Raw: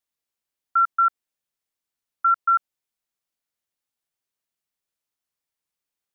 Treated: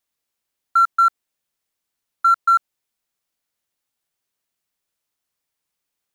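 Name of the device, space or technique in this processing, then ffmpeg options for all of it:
parallel distortion: -filter_complex "[0:a]asplit=2[link_01][link_02];[link_02]asoftclip=type=hard:threshold=-28dB,volume=-7.5dB[link_03];[link_01][link_03]amix=inputs=2:normalize=0,volume=3dB"

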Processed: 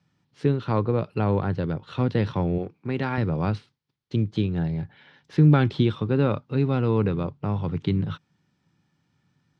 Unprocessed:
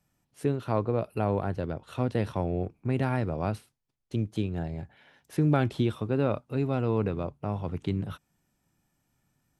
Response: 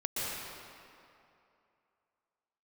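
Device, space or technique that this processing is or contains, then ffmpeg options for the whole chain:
guitar cabinet: -filter_complex "[0:a]highpass=92,equalizer=frequency=100:width_type=q:width=4:gain=4,equalizer=frequency=160:width_type=q:width=4:gain=6,equalizer=frequency=660:width_type=q:width=4:gain=-8,equalizer=frequency=2600:width_type=q:width=4:gain=-3,lowpass=frequency=4400:width=0.5412,lowpass=frequency=4400:width=1.3066,aemphasis=mode=production:type=50kf,asettb=1/sr,asplit=3[link_01][link_02][link_03];[link_01]atrim=end=2.584[link_04];[link_02]atrim=start=2.58:end=3.18,asetpts=PTS-STARTPTS,afade=type=in:duration=0.004:curve=qsin,afade=type=out:start_time=0.596:duration=0.004:curve=qsin,highpass=frequency=300:poles=1[link_05];[link_03]atrim=start=3.176[link_06];[link_04][link_05]acrossfade=duration=0.004:curve1=hsin:curve2=qsin[link_07];[link_07][link_06]acrossfade=duration=0.004:curve1=qsin:curve2=hsin,volume=4.5dB"

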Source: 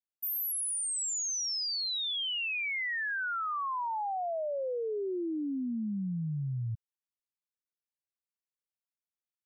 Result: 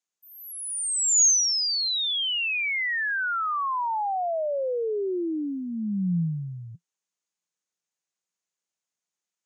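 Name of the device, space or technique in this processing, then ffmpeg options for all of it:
television speaker: -af "highpass=frequency=170:width=0.5412,highpass=frequency=170:width=1.3066,equalizer=frequency=170:width_type=q:width=4:gain=7,equalizer=frequency=250:width_type=q:width=4:gain=-6,equalizer=frequency=6600:width_type=q:width=4:gain=10,lowpass=frequency=8900:width=0.5412,lowpass=frequency=8900:width=1.3066,volume=6.5dB"

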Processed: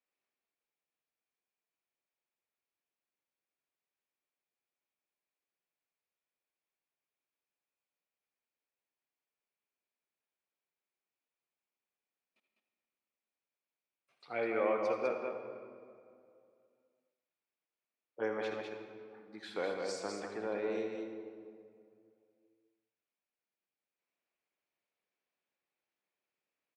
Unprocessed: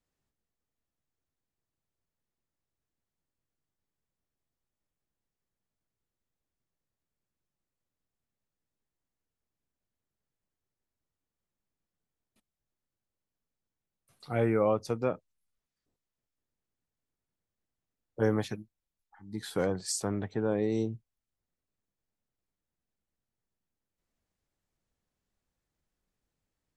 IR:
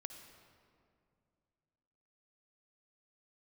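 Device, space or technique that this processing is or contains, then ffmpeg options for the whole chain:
station announcement: -filter_complex "[0:a]highpass=420,lowpass=4100,equalizer=frequency=2400:width_type=o:width=0.36:gain=8.5,aecho=1:1:78.72|201.2:0.251|0.562[link_01];[1:a]atrim=start_sample=2205[link_02];[link_01][link_02]afir=irnorm=-1:irlink=0"

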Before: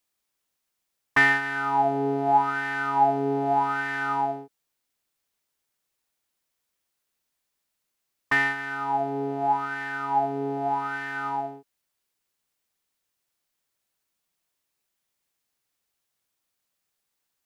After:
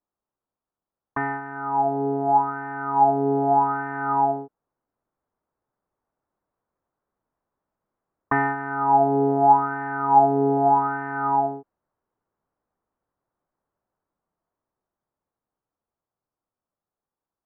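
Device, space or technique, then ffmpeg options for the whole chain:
action camera in a waterproof case: -af "lowpass=frequency=1200:width=0.5412,lowpass=frequency=1200:width=1.3066,dynaudnorm=framelen=650:gausssize=11:maxgain=9dB" -ar 44100 -c:a aac -b:a 96k

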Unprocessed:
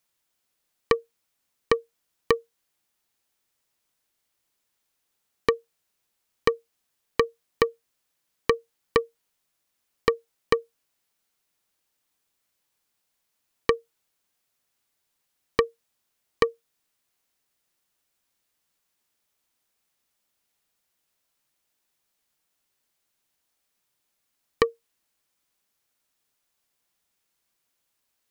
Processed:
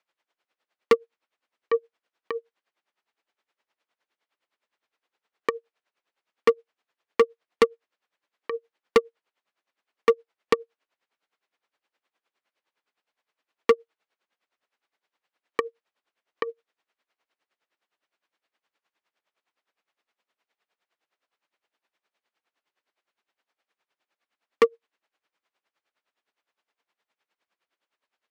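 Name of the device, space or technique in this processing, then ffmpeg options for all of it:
helicopter radio: -af "highpass=370,lowpass=2700,aeval=exprs='val(0)*pow(10,-20*(0.5-0.5*cos(2*PI*9.7*n/s))/20)':channel_layout=same,asoftclip=type=hard:threshold=-19.5dB,volume=9dB"

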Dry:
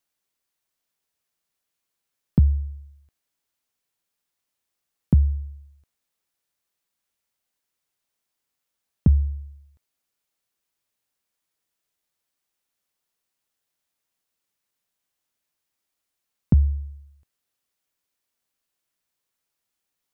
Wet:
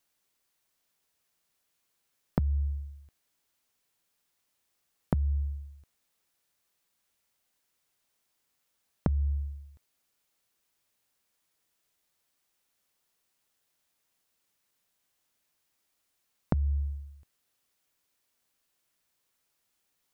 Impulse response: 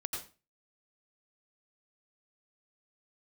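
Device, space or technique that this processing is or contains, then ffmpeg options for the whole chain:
serial compression, leveller first: -filter_complex "[0:a]acompressor=threshold=-19dB:ratio=6,acompressor=threshold=-29dB:ratio=6,asplit=3[link_01][link_02][link_03];[link_01]afade=type=out:start_time=16.55:duration=0.02[link_04];[link_02]equalizer=frequency=640:width_type=o:width=0.62:gain=12.5,afade=type=in:start_time=16.55:duration=0.02,afade=type=out:start_time=16.95:duration=0.02[link_05];[link_03]afade=type=in:start_time=16.95:duration=0.02[link_06];[link_04][link_05][link_06]amix=inputs=3:normalize=0,volume=4dB"

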